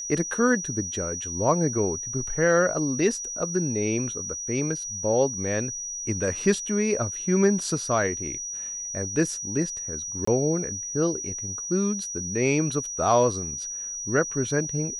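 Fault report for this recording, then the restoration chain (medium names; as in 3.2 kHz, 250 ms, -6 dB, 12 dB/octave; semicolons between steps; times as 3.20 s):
whine 5.8 kHz -31 dBFS
10.25–10.27 s: dropout 24 ms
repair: band-stop 5.8 kHz, Q 30; interpolate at 10.25 s, 24 ms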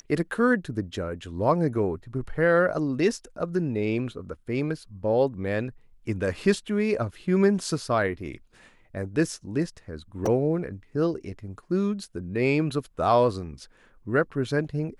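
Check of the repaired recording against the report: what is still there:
nothing left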